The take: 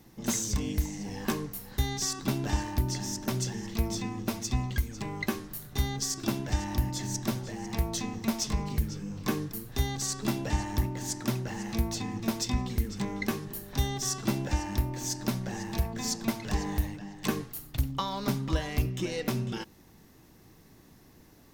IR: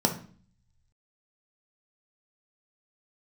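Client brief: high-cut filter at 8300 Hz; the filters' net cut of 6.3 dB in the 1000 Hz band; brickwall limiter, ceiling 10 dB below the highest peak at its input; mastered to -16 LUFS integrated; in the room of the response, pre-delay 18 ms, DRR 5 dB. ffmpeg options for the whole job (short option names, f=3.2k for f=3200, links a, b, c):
-filter_complex "[0:a]lowpass=8.3k,equalizer=f=1k:t=o:g=-8,alimiter=level_in=0.5dB:limit=-24dB:level=0:latency=1,volume=-0.5dB,asplit=2[a][b];[1:a]atrim=start_sample=2205,adelay=18[c];[b][c]afir=irnorm=-1:irlink=0,volume=-16.5dB[d];[a][d]amix=inputs=2:normalize=0,volume=16dB"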